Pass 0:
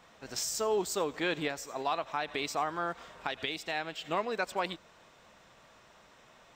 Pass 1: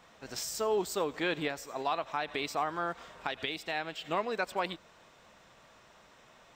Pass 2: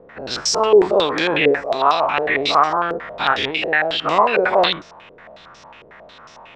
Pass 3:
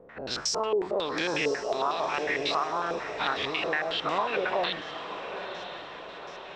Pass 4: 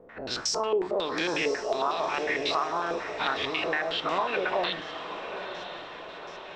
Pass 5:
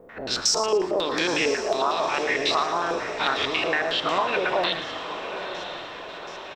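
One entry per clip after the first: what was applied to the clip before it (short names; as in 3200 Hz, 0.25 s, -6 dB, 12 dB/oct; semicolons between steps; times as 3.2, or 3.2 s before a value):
dynamic EQ 6600 Hz, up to -5 dB, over -51 dBFS, Q 1.7
spectral dilation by 0.12 s; stepped low-pass 11 Hz 460–5500 Hz; gain +7.5 dB
compressor 3:1, threshold -20 dBFS, peak gain reduction 10 dB; diffused feedback echo 0.972 s, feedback 52%, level -9.5 dB; gain -6.5 dB
reverb RT60 0.30 s, pre-delay 3 ms, DRR 12 dB
high shelf 7300 Hz +11 dB; frequency-shifting echo 0.114 s, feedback 36%, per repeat -44 Hz, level -11.5 dB; gain +3.5 dB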